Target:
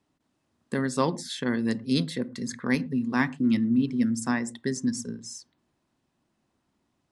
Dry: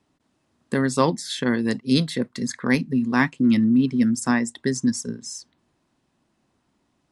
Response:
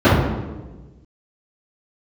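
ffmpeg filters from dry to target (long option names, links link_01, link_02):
-filter_complex "[0:a]asplit=2[link_01][link_02];[1:a]atrim=start_sample=2205,afade=type=out:start_time=0.14:duration=0.01,atrim=end_sample=6615,adelay=35[link_03];[link_02][link_03]afir=irnorm=-1:irlink=0,volume=-46.5dB[link_04];[link_01][link_04]amix=inputs=2:normalize=0,volume=-5.5dB"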